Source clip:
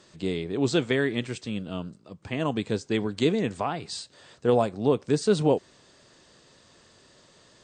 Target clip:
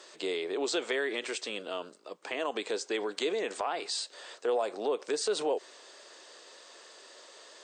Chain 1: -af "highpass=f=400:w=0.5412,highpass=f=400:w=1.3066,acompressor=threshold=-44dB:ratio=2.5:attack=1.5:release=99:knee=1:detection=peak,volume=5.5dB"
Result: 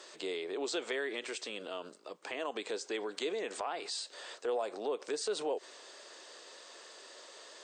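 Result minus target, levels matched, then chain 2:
compressor: peak gain reduction +5 dB
-af "highpass=f=400:w=0.5412,highpass=f=400:w=1.3066,acompressor=threshold=-36dB:ratio=2.5:attack=1.5:release=99:knee=1:detection=peak,volume=5.5dB"

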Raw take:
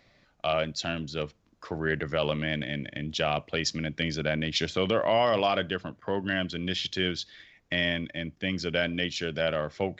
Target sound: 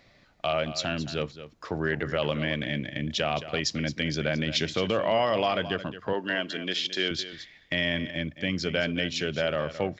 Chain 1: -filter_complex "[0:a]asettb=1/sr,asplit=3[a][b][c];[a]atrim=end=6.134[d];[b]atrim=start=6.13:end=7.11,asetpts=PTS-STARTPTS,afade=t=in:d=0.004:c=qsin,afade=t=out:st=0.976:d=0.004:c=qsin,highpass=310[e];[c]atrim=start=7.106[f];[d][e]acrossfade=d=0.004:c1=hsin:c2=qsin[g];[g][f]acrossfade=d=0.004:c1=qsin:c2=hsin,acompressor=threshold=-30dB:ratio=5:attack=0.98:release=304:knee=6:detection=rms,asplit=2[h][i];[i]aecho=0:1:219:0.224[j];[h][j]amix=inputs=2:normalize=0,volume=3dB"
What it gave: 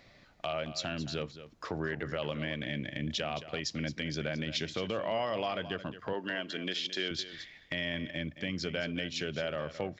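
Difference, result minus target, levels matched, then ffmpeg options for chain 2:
compressor: peak gain reduction +8 dB
-filter_complex "[0:a]asettb=1/sr,asplit=3[a][b][c];[a]atrim=end=6.134[d];[b]atrim=start=6.13:end=7.11,asetpts=PTS-STARTPTS,afade=t=in:d=0.004:c=qsin,afade=t=out:st=0.976:d=0.004:c=qsin,highpass=310[e];[c]atrim=start=7.106[f];[d][e]acrossfade=d=0.004:c1=hsin:c2=qsin[g];[g][f]acrossfade=d=0.004:c1=qsin:c2=hsin,acompressor=threshold=-19.5dB:ratio=5:attack=0.98:release=304:knee=6:detection=rms,asplit=2[h][i];[i]aecho=0:1:219:0.224[j];[h][j]amix=inputs=2:normalize=0,volume=3dB"

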